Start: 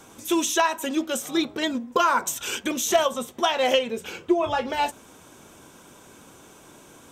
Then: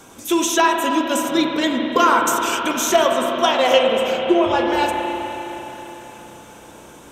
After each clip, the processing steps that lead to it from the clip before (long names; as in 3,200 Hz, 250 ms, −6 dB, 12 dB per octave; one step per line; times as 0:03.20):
spring reverb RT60 3.9 s, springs 32/52 ms, chirp 55 ms, DRR 1 dB
level +4 dB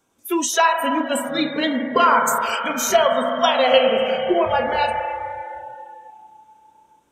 noise reduction from a noise print of the clip's start 23 dB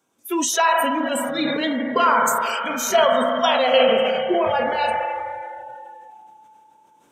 high-pass filter 130 Hz 12 dB per octave
level that may fall only so fast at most 22 dB per second
level −2.5 dB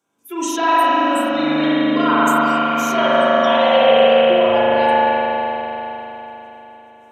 spring reverb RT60 4 s, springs 39 ms, chirp 50 ms, DRR −8.5 dB
level −5.5 dB